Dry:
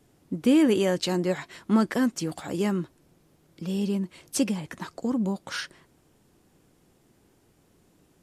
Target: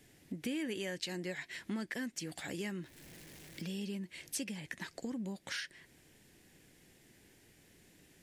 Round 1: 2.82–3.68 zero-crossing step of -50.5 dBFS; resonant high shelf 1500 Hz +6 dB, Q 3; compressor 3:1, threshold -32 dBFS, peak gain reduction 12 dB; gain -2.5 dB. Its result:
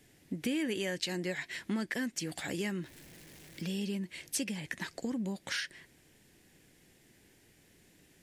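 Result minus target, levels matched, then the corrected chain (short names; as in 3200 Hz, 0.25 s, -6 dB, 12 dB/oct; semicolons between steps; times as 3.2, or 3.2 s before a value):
compressor: peak gain reduction -4.5 dB
2.82–3.68 zero-crossing step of -50.5 dBFS; resonant high shelf 1500 Hz +6 dB, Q 3; compressor 3:1, threshold -39 dBFS, peak gain reduction 16.5 dB; gain -2.5 dB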